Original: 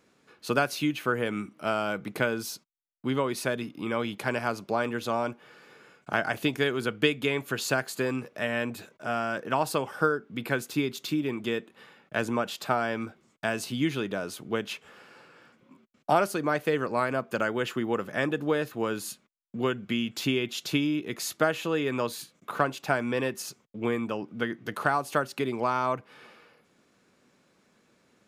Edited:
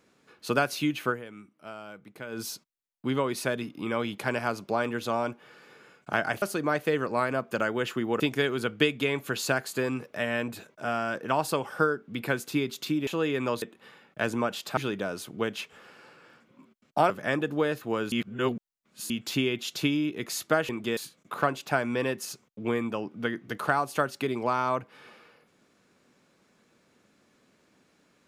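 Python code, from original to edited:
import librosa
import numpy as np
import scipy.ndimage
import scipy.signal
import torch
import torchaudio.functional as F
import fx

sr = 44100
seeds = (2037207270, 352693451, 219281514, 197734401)

y = fx.edit(x, sr, fx.fade_down_up(start_s=1.09, length_s=1.31, db=-14.0, fade_s=0.16, curve='qua'),
    fx.swap(start_s=11.29, length_s=0.28, other_s=21.59, other_length_s=0.55),
    fx.cut(start_s=12.72, length_s=1.17),
    fx.move(start_s=16.22, length_s=1.78, to_s=6.42),
    fx.reverse_span(start_s=19.02, length_s=0.98), tone=tone)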